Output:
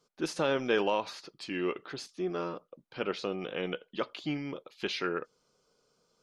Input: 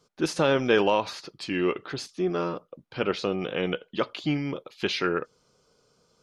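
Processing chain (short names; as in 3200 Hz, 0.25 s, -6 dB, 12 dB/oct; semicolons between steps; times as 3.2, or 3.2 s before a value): bell 84 Hz -9 dB 1.4 oct; gain -6 dB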